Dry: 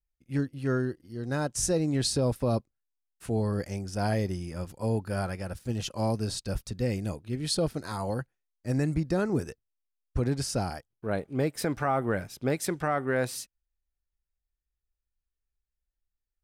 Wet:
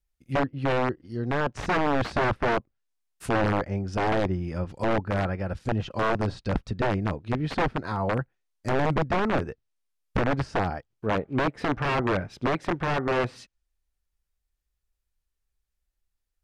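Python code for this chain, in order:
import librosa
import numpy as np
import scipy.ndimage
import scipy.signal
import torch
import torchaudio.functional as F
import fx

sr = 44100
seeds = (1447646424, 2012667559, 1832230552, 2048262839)

y = (np.mod(10.0 ** (22.0 / 20.0) * x + 1.0, 2.0) - 1.0) / 10.0 ** (22.0 / 20.0)
y = fx.env_lowpass_down(y, sr, base_hz=1900.0, full_db=-29.5)
y = F.gain(torch.from_numpy(y), 5.5).numpy()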